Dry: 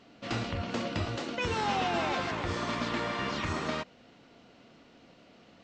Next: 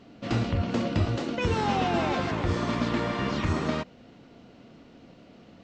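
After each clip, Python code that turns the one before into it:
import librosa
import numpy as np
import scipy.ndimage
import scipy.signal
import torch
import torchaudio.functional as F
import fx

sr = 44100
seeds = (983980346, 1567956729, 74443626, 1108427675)

y = fx.low_shelf(x, sr, hz=500.0, db=9.5)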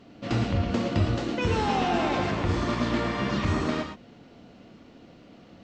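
y = fx.rev_gated(x, sr, seeds[0], gate_ms=140, shape='rising', drr_db=5.5)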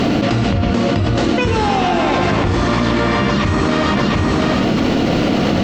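y = x + 10.0 ** (-18.5 / 20.0) * np.pad(x, (int(706 * sr / 1000.0), 0))[:len(x)]
y = fx.env_flatten(y, sr, amount_pct=100)
y = F.gain(torch.from_numpy(y), 4.5).numpy()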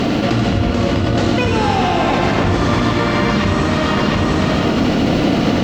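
y = np.sign(x) * np.maximum(np.abs(x) - 10.0 ** (-44.5 / 20.0), 0.0)
y = fx.echo_split(y, sr, split_hz=690.0, low_ms=229, high_ms=85, feedback_pct=52, wet_db=-5.5)
y = F.gain(torch.from_numpy(y), -1.0).numpy()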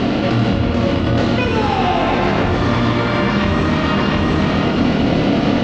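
y = scipy.signal.sosfilt(scipy.signal.butter(2, 4700.0, 'lowpass', fs=sr, output='sos'), x)
y = fx.doubler(y, sr, ms=25.0, db=-5.5)
y = F.gain(torch.from_numpy(y), -1.5).numpy()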